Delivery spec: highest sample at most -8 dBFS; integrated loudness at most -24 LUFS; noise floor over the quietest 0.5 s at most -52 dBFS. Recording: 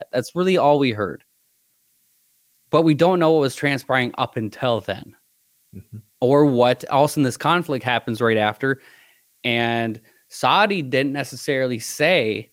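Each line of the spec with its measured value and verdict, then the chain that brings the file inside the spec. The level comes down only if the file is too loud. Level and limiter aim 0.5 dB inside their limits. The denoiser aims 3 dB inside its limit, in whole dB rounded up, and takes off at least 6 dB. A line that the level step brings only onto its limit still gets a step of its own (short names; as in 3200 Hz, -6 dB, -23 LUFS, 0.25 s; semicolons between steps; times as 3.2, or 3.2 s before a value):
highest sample -4.0 dBFS: fail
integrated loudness -20.0 LUFS: fail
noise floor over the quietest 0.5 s -65 dBFS: OK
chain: gain -4.5 dB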